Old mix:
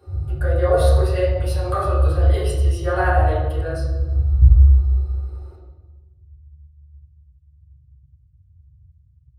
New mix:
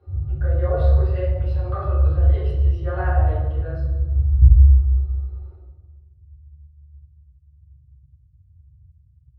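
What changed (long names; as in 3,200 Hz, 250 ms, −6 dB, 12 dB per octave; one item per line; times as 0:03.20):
speech −6.5 dB
master: add high-frequency loss of the air 310 metres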